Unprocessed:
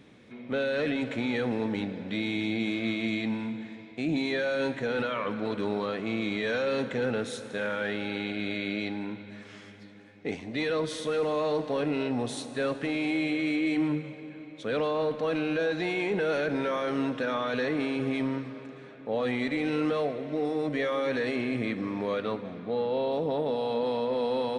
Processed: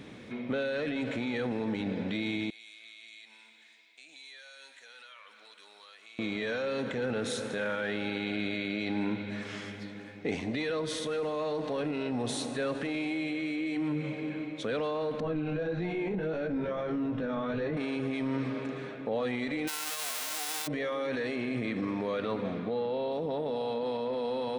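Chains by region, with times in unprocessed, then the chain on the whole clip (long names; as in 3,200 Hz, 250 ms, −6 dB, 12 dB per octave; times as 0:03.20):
0:02.50–0:06.19: high-pass filter 810 Hz 6 dB per octave + first difference + downward compressor 2 to 1, threshold −56 dBFS
0:15.20–0:17.77: RIAA equalisation playback + chorus effect 1.6 Hz, delay 17.5 ms, depth 3.5 ms
0:19.67–0:20.66: spectral envelope flattened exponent 0.1 + high-pass filter 500 Hz
whole clip: brickwall limiter −28 dBFS; speech leveller within 4 dB 0.5 s; level +3.5 dB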